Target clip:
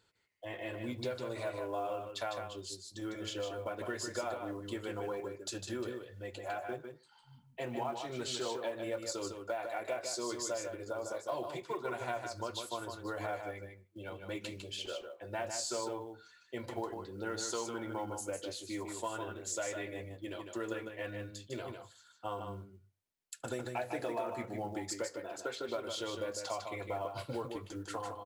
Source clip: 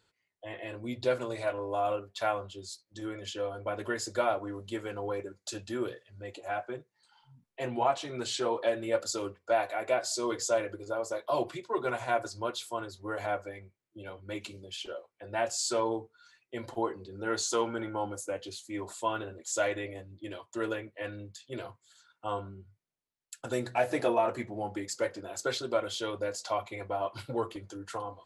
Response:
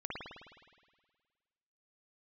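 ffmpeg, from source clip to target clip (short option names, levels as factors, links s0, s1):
-filter_complex "[0:a]asettb=1/sr,asplit=3[s0][s1][s2];[s0]atrim=end=25.054[s3];[s1]atrim=start=25.05:end=25.69,asetpts=PTS-STARTPTS,afade=t=in:d=0.004:c=qsin,afade=t=out:st=0.636:d=0.004:c=qsin,bass=f=250:g=-8,treble=f=4000:g=-10[s4];[s2]atrim=start=25.686[s5];[s3][s4]acrossfade=d=0.004:c1=hsin:c2=qsin[s6];[s6][s5]acrossfade=d=0.004:c1=qsin:c2=hsin,acompressor=threshold=0.0178:ratio=4,aecho=1:1:153:0.501,asplit=2[s7][s8];[1:a]atrim=start_sample=2205,atrim=end_sample=4410,adelay=73[s9];[s8][s9]afir=irnorm=-1:irlink=0,volume=0.075[s10];[s7][s10]amix=inputs=2:normalize=0,acrusher=bits=8:mode=log:mix=0:aa=0.000001,volume=0.891"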